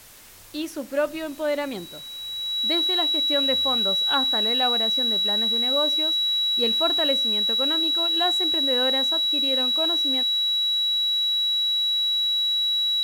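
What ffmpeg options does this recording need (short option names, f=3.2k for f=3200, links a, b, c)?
-af "bandreject=f=3.9k:w=30,afwtdn=0.0045"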